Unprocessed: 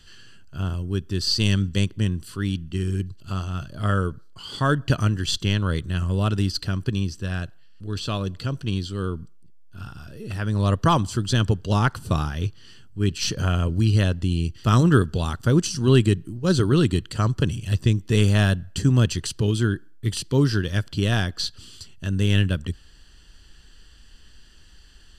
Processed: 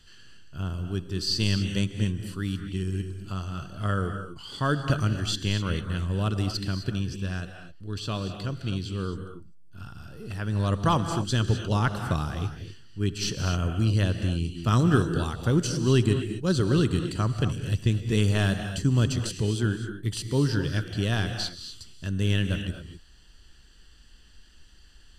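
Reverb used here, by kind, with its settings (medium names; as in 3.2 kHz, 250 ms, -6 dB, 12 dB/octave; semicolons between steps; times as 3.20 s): gated-style reverb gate 280 ms rising, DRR 7 dB; trim -4.5 dB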